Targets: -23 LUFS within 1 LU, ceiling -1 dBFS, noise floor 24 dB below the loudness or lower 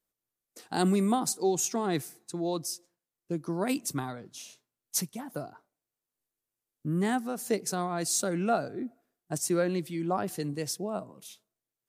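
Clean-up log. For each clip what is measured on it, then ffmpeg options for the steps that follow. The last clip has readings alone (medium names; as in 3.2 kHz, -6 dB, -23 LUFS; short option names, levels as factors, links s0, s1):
loudness -31.0 LUFS; peak level -12.5 dBFS; loudness target -23.0 LUFS
-> -af "volume=2.51"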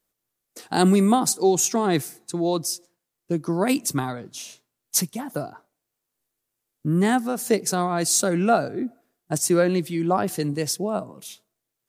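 loudness -23.0 LUFS; peak level -4.5 dBFS; noise floor -82 dBFS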